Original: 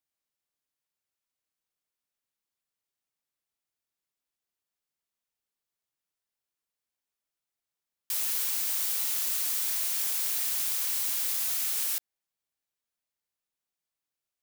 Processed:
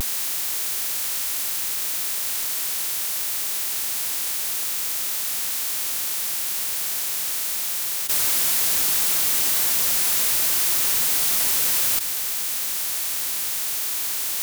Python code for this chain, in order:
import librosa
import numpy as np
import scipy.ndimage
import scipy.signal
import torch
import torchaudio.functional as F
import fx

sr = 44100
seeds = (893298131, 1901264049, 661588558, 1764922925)

y = fx.bin_compress(x, sr, power=0.2)
y = fx.leveller(y, sr, passes=5)
y = fx.vibrato(y, sr, rate_hz=0.67, depth_cents=42.0)
y = y * librosa.db_to_amplitude(-6.5)